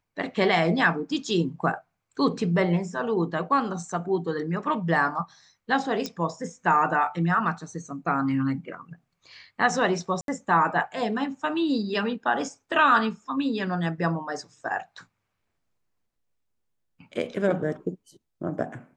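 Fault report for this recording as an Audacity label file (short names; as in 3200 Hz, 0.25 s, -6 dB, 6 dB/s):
6.060000	6.060000	pop -17 dBFS
10.210000	10.280000	gap 72 ms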